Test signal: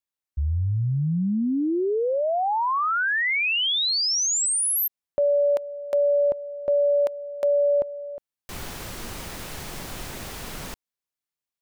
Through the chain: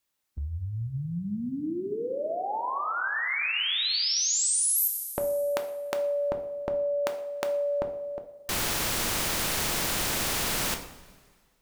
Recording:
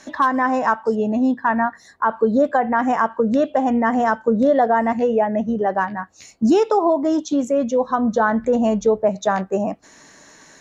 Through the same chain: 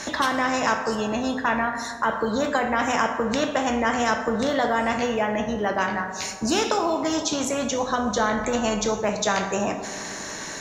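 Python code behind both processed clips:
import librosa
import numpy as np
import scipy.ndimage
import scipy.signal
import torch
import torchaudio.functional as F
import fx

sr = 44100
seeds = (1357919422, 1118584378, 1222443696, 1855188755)

y = fx.rev_double_slope(x, sr, seeds[0], early_s=0.48, late_s=1.8, knee_db=-17, drr_db=6.0)
y = fx.spectral_comp(y, sr, ratio=2.0)
y = y * 10.0 ** (-2.5 / 20.0)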